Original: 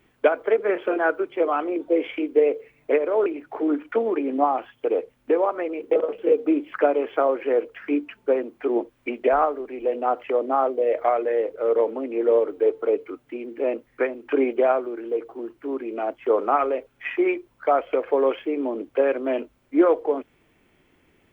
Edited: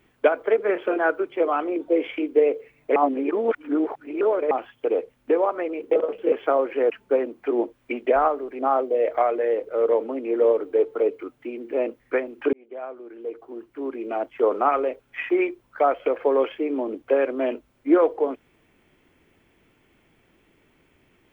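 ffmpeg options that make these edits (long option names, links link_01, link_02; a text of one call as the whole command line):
ffmpeg -i in.wav -filter_complex "[0:a]asplit=7[link_01][link_02][link_03][link_04][link_05][link_06][link_07];[link_01]atrim=end=2.962[link_08];[link_02]atrim=start=2.958:end=4.512,asetpts=PTS-STARTPTS,areverse[link_09];[link_03]atrim=start=4.508:end=6.322[link_10];[link_04]atrim=start=7.018:end=7.602[link_11];[link_05]atrim=start=8.068:end=9.762[link_12];[link_06]atrim=start=10.458:end=14.4,asetpts=PTS-STARTPTS,afade=type=out:start_time=3.938:duration=0.004:curve=hsin[link_13];[link_07]atrim=start=14.4,asetpts=PTS-STARTPTS,afade=type=in:duration=1.6[link_14];[link_08][link_09]acrossfade=duration=0.004:curve1=hsin:curve2=hsin[link_15];[link_15][link_10]acrossfade=duration=0.004:curve1=hsin:curve2=hsin[link_16];[link_16][link_11]acrossfade=duration=0.004:curve1=hsin:curve2=hsin[link_17];[link_17][link_12]acrossfade=duration=0.004:curve1=hsin:curve2=hsin[link_18];[link_13][link_14]concat=n=2:v=0:a=1[link_19];[link_18][link_19]acrossfade=duration=0.004:curve1=hsin:curve2=hsin" out.wav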